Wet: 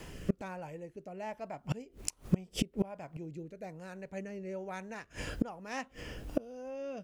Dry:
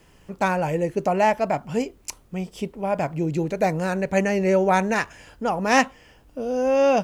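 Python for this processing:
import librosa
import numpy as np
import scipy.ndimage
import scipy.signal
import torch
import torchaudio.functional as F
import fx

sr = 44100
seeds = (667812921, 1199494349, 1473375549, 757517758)

y = fx.gate_flip(x, sr, shuts_db=-25.0, range_db=-30)
y = fx.rotary(y, sr, hz=1.2)
y = F.gain(torch.from_numpy(y), 11.0).numpy()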